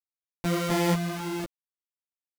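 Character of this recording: a buzz of ramps at a fixed pitch in blocks of 256 samples; random-step tremolo 4.3 Hz, depth 55%; a quantiser's noise floor 6-bit, dither none; a shimmering, thickened sound

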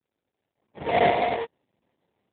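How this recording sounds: a quantiser's noise floor 12-bit, dither triangular; random-step tremolo; aliases and images of a low sample rate 1.4 kHz, jitter 20%; AMR-NB

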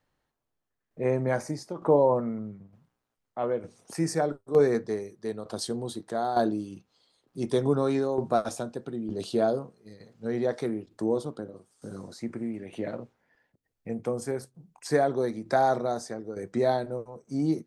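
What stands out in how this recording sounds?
tremolo saw down 1.1 Hz, depth 65%

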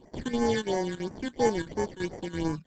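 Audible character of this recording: aliases and images of a low sample rate 1.3 kHz, jitter 0%; phasing stages 8, 2.9 Hz, lowest notch 670–3700 Hz; chopped level 3 Hz, depth 65%, duty 85%; Opus

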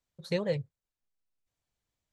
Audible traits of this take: noise floor -92 dBFS; spectral tilt -5.5 dB/octave

